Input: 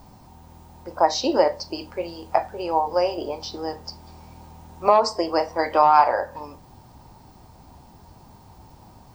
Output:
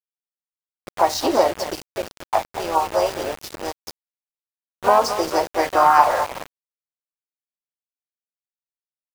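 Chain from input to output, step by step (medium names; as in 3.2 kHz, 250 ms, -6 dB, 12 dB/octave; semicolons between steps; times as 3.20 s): delay 225 ms -11 dB; harmony voices +3 st -5 dB, +7 st -16 dB; small samples zeroed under -26.5 dBFS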